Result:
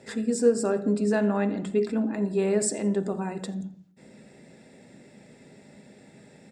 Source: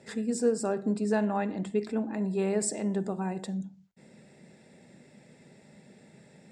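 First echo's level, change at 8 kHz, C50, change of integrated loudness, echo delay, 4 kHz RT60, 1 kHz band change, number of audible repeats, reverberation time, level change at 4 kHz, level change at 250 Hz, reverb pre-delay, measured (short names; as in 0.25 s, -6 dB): -22.0 dB, +3.5 dB, 15.5 dB, +4.0 dB, 85 ms, 0.60 s, 0.0 dB, 1, 0.70 s, +3.5 dB, +3.5 dB, 3 ms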